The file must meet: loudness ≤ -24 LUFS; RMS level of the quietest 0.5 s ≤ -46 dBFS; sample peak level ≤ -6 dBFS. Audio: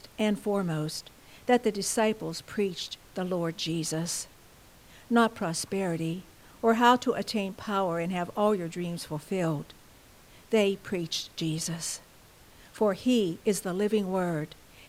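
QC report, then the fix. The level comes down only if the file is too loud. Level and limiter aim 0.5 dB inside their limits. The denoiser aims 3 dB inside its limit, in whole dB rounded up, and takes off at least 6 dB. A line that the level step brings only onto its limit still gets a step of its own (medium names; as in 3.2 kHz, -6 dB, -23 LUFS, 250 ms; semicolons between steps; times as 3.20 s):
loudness -29.0 LUFS: pass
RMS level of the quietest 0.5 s -55 dBFS: pass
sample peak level -8.0 dBFS: pass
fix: none needed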